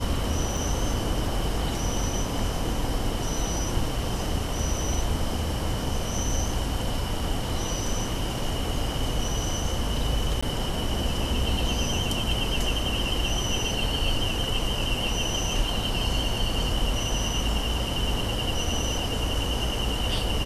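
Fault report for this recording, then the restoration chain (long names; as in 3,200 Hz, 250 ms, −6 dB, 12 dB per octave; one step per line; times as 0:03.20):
0:00.57: drop-out 3.5 ms
0:10.41–0:10.43: drop-out 15 ms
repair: repair the gap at 0:00.57, 3.5 ms
repair the gap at 0:10.41, 15 ms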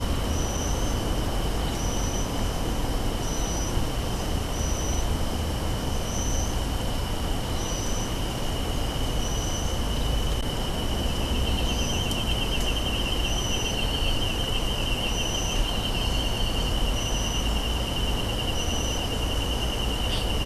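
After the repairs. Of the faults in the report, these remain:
none of them is left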